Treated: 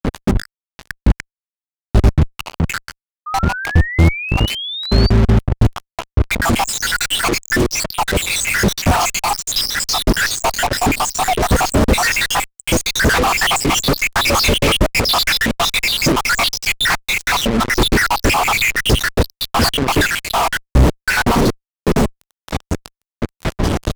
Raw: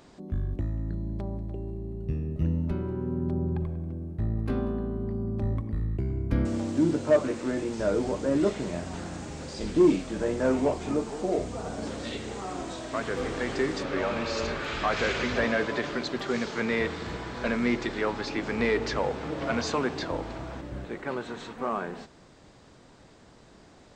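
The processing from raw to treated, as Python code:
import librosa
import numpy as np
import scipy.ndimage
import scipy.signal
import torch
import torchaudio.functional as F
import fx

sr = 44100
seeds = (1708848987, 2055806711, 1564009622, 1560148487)

y = fx.spec_dropout(x, sr, seeds[0], share_pct=83)
y = fx.over_compress(y, sr, threshold_db=-37.0, ratio=-0.5)
y = fx.fuzz(y, sr, gain_db=58.0, gate_db=-51.0)
y = fx.spec_paint(y, sr, seeds[1], shape='rise', start_s=3.26, length_s=1.84, low_hz=1200.0, high_hz=4700.0, level_db=-25.0)
y = fx.low_shelf(y, sr, hz=140.0, db=11.0)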